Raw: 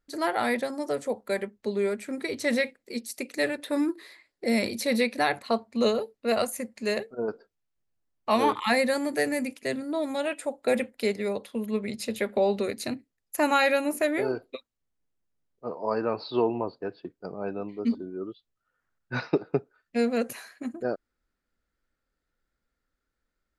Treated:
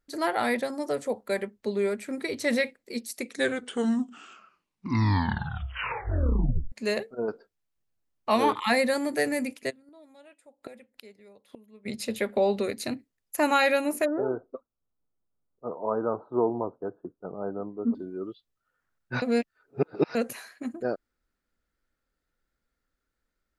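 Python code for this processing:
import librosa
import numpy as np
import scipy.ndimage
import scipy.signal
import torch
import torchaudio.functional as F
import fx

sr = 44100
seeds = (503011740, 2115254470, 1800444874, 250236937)

y = fx.gate_flip(x, sr, shuts_db=-28.0, range_db=-24, at=(9.69, 11.85), fade=0.02)
y = fx.ellip_lowpass(y, sr, hz=1400.0, order=4, stop_db=40, at=(14.04, 17.94), fade=0.02)
y = fx.edit(y, sr, fx.tape_stop(start_s=3.11, length_s=3.61),
    fx.reverse_span(start_s=19.22, length_s=0.93), tone=tone)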